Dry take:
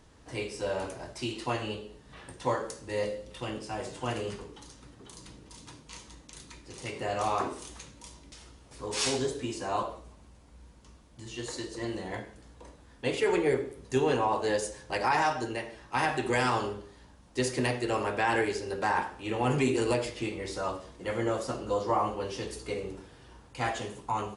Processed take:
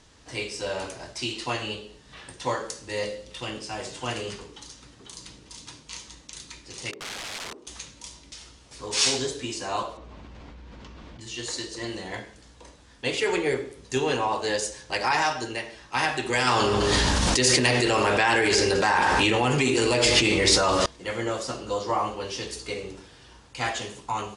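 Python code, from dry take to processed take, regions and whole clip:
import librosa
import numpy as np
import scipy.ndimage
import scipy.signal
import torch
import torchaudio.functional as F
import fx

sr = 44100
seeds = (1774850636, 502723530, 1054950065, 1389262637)

y = fx.chain(x, sr, fx.bandpass_q(hz=360.0, q=1.7),
    fx.overflow_wrap(gain_db=36.0), at=(6.91, 7.67))
y = fx.chain(y, sr, fx.lowpass(hz=2800.0, slope=12),
    fx.peak_eq(hz=310.0, db=2.5, octaves=1.6),
    fx.env_flatten(amount_pct=100), at=(9.97, 11.21))
y = fx.chain(y, sr, fx.echo_single(ms=203, db=-20.5),
    fx.env_flatten(amount_pct=100), at=(16.47, 20.86))
y = scipy.signal.sosfilt(scipy.signal.butter(2, 7000.0, 'lowpass', fs=sr, output='sos'), y)
y = fx.high_shelf(y, sr, hz=2200.0, db=12.0)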